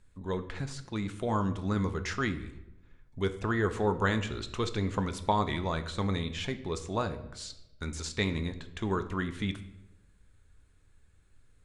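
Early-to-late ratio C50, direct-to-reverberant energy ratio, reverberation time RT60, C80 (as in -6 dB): 13.0 dB, 8.5 dB, 0.95 s, 15.5 dB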